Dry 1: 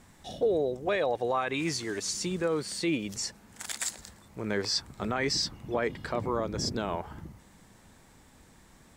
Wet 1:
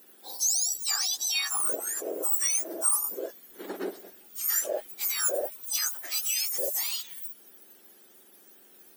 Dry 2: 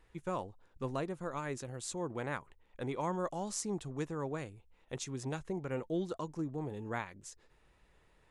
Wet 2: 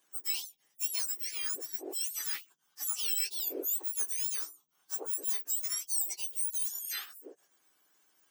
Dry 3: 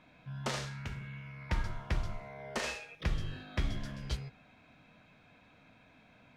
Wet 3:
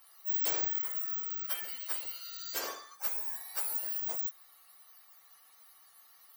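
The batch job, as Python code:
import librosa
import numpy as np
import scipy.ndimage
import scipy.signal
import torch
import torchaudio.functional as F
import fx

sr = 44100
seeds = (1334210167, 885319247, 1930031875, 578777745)

y = fx.octave_mirror(x, sr, pivot_hz=1700.0)
y = fx.riaa(y, sr, side='recording')
y = y * 10.0 ** (-2.5 / 20.0)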